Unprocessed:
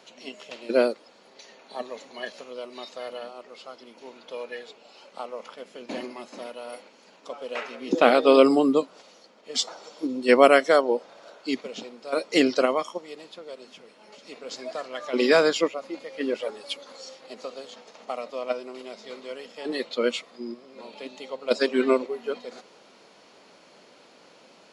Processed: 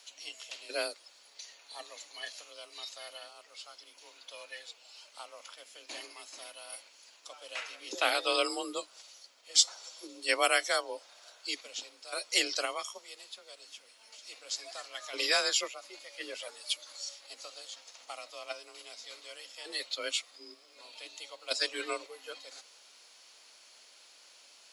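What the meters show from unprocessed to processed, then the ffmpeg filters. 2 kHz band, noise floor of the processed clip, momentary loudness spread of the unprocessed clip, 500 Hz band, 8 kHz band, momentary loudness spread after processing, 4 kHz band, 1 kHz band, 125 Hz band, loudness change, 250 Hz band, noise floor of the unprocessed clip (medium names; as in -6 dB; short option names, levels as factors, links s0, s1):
-5.0 dB, -60 dBFS, 23 LU, -16.5 dB, +6.0 dB, 21 LU, +0.5 dB, -10.5 dB, under -30 dB, -9.5 dB, -22.0 dB, -55 dBFS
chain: -af "afreqshift=35,aderivative,volume=2"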